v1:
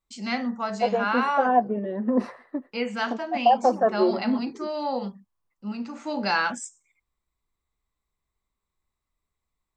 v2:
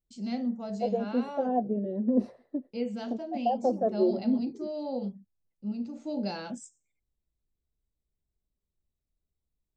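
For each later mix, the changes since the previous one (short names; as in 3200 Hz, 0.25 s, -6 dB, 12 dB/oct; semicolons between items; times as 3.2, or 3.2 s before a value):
master: add EQ curve 160 Hz 0 dB, 630 Hz -5 dB, 1100 Hz -23 dB, 1900 Hz -21 dB, 3700 Hz -11 dB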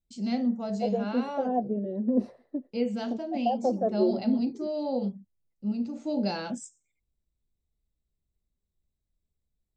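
first voice +4.0 dB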